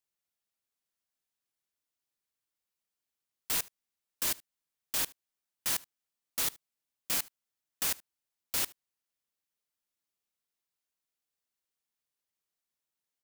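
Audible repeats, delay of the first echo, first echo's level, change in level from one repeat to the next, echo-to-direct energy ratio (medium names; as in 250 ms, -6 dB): 1, 75 ms, -23.5 dB, no regular repeats, -23.5 dB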